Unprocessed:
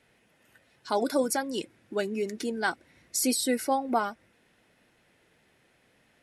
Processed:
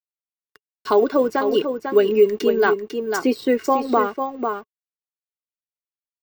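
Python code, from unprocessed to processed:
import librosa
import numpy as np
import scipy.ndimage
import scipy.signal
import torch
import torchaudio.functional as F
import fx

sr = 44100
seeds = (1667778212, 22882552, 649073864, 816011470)

p1 = fx.env_lowpass_down(x, sr, base_hz=2800.0, full_db=-26.0)
p2 = fx.rider(p1, sr, range_db=10, speed_s=2.0)
p3 = p1 + F.gain(torch.from_numpy(p2), -1.0).numpy()
p4 = np.sign(p3) * np.maximum(np.abs(p3) - 10.0 ** (-47.0 / 20.0), 0.0)
p5 = fx.small_body(p4, sr, hz=(420.0, 1100.0, 2800.0), ring_ms=45, db=13)
p6 = p5 + fx.echo_single(p5, sr, ms=497, db=-8.5, dry=0)
p7 = np.repeat(scipy.signal.resample_poly(p6, 1, 2), 2)[:len(p6)]
y = fx.band_squash(p7, sr, depth_pct=40)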